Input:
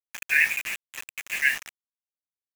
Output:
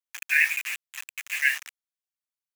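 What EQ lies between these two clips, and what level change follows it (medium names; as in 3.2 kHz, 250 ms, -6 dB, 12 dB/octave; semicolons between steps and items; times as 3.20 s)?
high-pass 1.1 kHz 12 dB/octave; 0.0 dB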